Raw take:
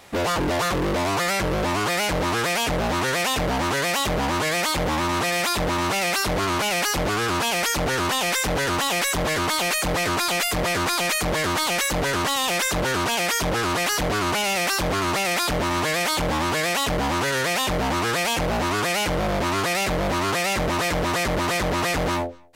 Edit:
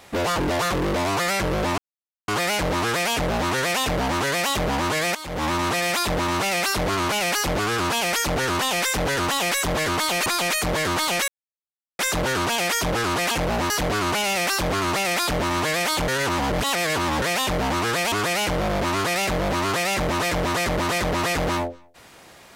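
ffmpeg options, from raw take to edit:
-filter_complex "[0:a]asplit=11[s0][s1][s2][s3][s4][s5][s6][s7][s8][s9][s10];[s0]atrim=end=1.78,asetpts=PTS-STARTPTS,afade=t=out:st=1.776:d=0.004:c=hsin,apad=pad_dur=0.5[s11];[s1]atrim=start=1.78:end=4.65,asetpts=PTS-STARTPTS,afade=t=in:d=0.004:c=hsin,afade=t=out:st=2.866:d=0.004:c=hsin:silence=0.211349[s12];[s2]atrim=start=4.65:end=9.762,asetpts=PTS-STARTPTS,afade=t=in:d=0.3:c=qua:silence=0.211349[s13];[s3]atrim=start=10.848:end=11.87,asetpts=PTS-STARTPTS,afade=t=out:st=1.018:d=0.004:c=hsin[s14];[s4]atrim=start=11.87:end=12.58,asetpts=PTS-STARTPTS,volume=0[s15];[s5]atrim=start=12.58:end=13.902,asetpts=PTS-STARTPTS,afade=t=in:d=0.004:c=hsin[s16];[s6]atrim=start=18.318:end=18.712[s17];[s7]atrim=start=13.898:end=16.282[s18];[s8]atrim=start=16.278:end=17.422,asetpts=PTS-STARTPTS,areverse[s19];[s9]atrim=start=17.418:end=18.322[s20];[s10]atrim=start=18.708[s21];[s11][s12][s13]concat=n=3:v=0:a=1[s22];[s14][s15][s16]concat=n=3:v=0:a=1[s23];[s22][s23]acrossfade=d=0.004:c1=hsin:c2=hsin[s24];[s24][s17]acrossfade=d=0.004:c1=hsin:c2=hsin[s25];[s25][s18]acrossfade=d=0.004:c1=hsin:c2=hsin[s26];[s26][s19]acrossfade=d=0.004:c1=hsin:c2=hsin[s27];[s27][s20]acrossfade=d=0.004:c1=hsin:c2=hsin[s28];[s28][s21]acrossfade=d=0.004:c1=hsin:c2=hsin"

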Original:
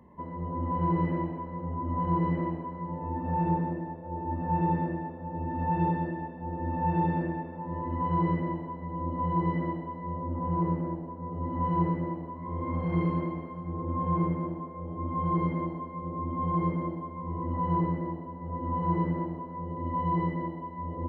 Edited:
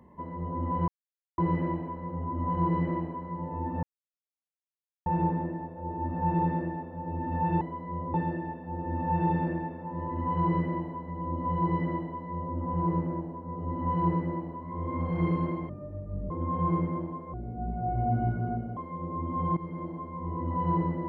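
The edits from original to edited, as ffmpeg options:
-filter_complex "[0:a]asplit=10[s0][s1][s2][s3][s4][s5][s6][s7][s8][s9];[s0]atrim=end=0.88,asetpts=PTS-STARTPTS,afade=t=out:st=0.876:d=0.004:c=hsin,apad=pad_dur=0.5[s10];[s1]atrim=start=0.88:end=3.33,asetpts=PTS-STARTPTS,afade=t=in:d=0.004:c=hsin,afade=t=out:st=2.446:d=0.004:c=hsin,apad=pad_dur=1.23[s11];[s2]atrim=start=3.33:end=5.882,asetpts=PTS-STARTPTS,afade=t=in:d=0.004:c=hsin[s12];[s3]atrim=start=9.758:end=10.292[s13];[s4]atrim=start=5.878:end=13.434[s14];[s5]atrim=start=13.43:end=13.78,asetpts=PTS-STARTPTS,asetrate=25137,aresample=44100[s15];[s6]atrim=start=13.776:end=14.814[s16];[s7]atrim=start=14.81:end=15.8,asetpts=PTS-STARTPTS,asetrate=30429,aresample=44100[s17];[s8]atrim=start=15.796:end=16.6,asetpts=PTS-STARTPTS,afade=t=out:st=0.8:d=0.004:c=hsin:silence=0.188365[s18];[s9]atrim=start=16.6,asetpts=PTS-STARTPTS,afade=t=in:d=0.49:silence=0.188365[s19];[s10][s11][s12]concat=n=3:v=0:a=1[s20];[s20][s13]acrossfade=d=0.004:c1=hsin:c2=hsin[s21];[s21][s14]acrossfade=d=0.004:c1=hsin:c2=hsin[s22];[s22][s15]acrossfade=d=0.004:c1=hsin:c2=hsin[s23];[s23][s16]acrossfade=d=0.004:c1=hsin:c2=hsin[s24];[s24][s17]acrossfade=d=0.004:c1=hsin:c2=hsin[s25];[s18][s19]concat=n=2:v=0:a=1[s26];[s25][s26]acrossfade=d=0.004:c1=hsin:c2=hsin"

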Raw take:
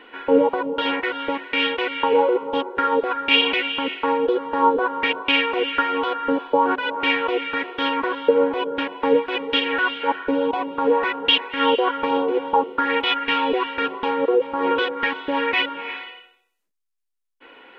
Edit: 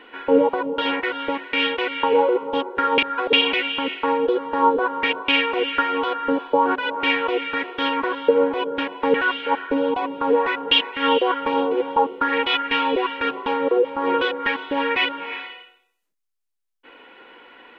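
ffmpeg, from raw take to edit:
-filter_complex "[0:a]asplit=4[s0][s1][s2][s3];[s0]atrim=end=2.982[s4];[s1]atrim=start=2.978:end=3.332,asetpts=PTS-STARTPTS,areverse[s5];[s2]atrim=start=3.328:end=9.142[s6];[s3]atrim=start=9.708[s7];[s4][s5]acrossfade=d=0.004:c1=hsin:c2=hsin[s8];[s8][s6]acrossfade=d=0.004:c1=hsin:c2=hsin[s9];[s9][s7]acrossfade=d=0.004:c1=hsin:c2=hsin"

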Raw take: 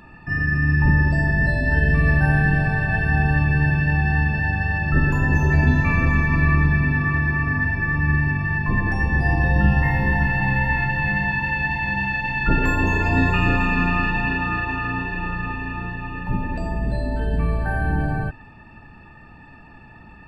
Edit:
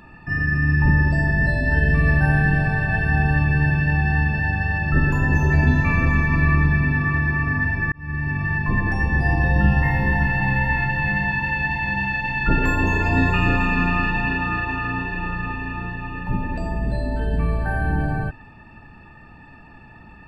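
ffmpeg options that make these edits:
-filter_complex "[0:a]asplit=2[s0][s1];[s0]atrim=end=7.92,asetpts=PTS-STARTPTS,afade=t=out:st=7.916:d=0.004:c=hsin[s2];[s1]atrim=start=7.92,asetpts=PTS-STARTPTS,afade=t=in:d=0.52[s3];[s2][s3]concat=n=2:v=0:a=1"

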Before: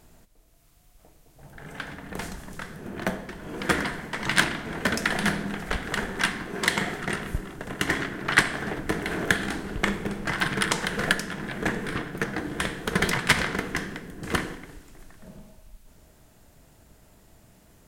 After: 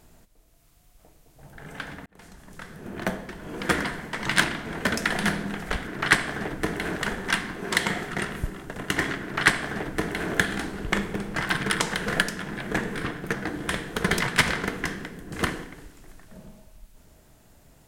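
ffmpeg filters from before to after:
-filter_complex "[0:a]asplit=4[s0][s1][s2][s3];[s0]atrim=end=2.06,asetpts=PTS-STARTPTS,afade=t=out:st=2.056:d=0.004:c=hsin[s4];[s1]atrim=start=2.06:end=5.872,asetpts=PTS-STARTPTS,afade=t=in:d=0.88[s5];[s2]atrim=start=8.128:end=9.222[s6];[s3]atrim=start=5.868[s7];[s4][s5]concat=n=2:v=0:a=1[s8];[s8][s6]acrossfade=d=0.004:c1=hsin:c2=hsin[s9];[s9][s7]acrossfade=d=0.004:c1=hsin:c2=hsin"

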